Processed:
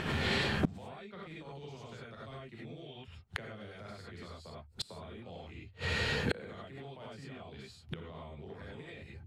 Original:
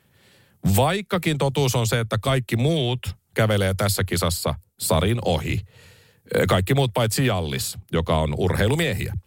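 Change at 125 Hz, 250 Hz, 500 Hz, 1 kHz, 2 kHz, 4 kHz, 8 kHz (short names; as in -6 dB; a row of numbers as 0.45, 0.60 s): -20.0, -16.5, -20.0, -18.0, -10.5, -13.5, -25.0 dB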